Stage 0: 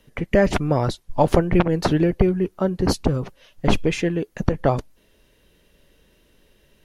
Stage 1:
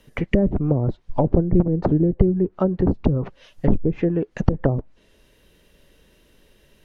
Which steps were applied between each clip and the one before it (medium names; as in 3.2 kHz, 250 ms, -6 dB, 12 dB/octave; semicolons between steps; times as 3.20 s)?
low-pass that closes with the level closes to 360 Hz, closed at -15 dBFS; trim +2 dB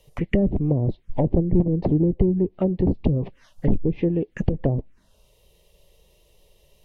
saturation -7.5 dBFS, distortion -17 dB; touch-sensitive phaser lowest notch 250 Hz, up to 1.4 kHz, full sweep at -21 dBFS; Vorbis 64 kbps 44.1 kHz